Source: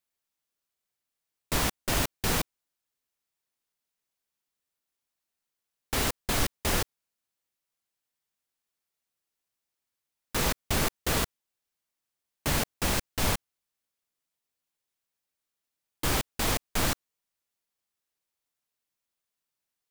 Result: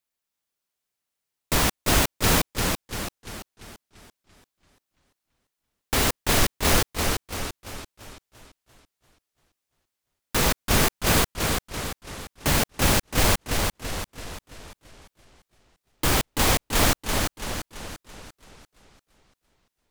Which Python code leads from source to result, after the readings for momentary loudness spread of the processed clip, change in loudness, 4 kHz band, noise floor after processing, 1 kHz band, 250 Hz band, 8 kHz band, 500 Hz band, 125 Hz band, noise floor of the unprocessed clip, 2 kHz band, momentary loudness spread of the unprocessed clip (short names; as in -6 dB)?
18 LU, +5.5 dB, +7.5 dB, -84 dBFS, +7.5 dB, +7.5 dB, +7.5 dB, +7.5 dB, +7.5 dB, under -85 dBFS, +7.5 dB, 6 LU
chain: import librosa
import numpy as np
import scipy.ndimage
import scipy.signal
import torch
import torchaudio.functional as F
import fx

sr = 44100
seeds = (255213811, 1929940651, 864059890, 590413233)

y = fx.leveller(x, sr, passes=1)
y = fx.echo_warbled(y, sr, ms=339, feedback_pct=48, rate_hz=2.8, cents=152, wet_db=-4)
y = F.gain(torch.from_numpy(y), 2.5).numpy()